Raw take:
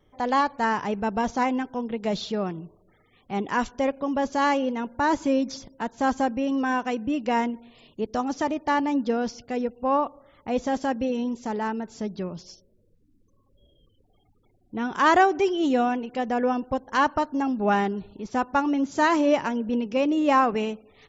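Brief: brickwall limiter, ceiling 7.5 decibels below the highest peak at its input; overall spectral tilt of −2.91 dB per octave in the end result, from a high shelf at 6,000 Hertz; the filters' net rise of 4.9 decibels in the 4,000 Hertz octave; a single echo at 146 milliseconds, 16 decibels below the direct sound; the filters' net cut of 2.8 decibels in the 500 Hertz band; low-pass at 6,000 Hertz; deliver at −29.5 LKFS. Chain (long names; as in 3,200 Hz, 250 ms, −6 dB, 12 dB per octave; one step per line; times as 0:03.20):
low-pass filter 6,000 Hz
parametric band 500 Hz −3.5 dB
parametric band 4,000 Hz +8.5 dB
high-shelf EQ 6,000 Hz −3 dB
brickwall limiter −15.5 dBFS
single-tap delay 146 ms −16 dB
level −2 dB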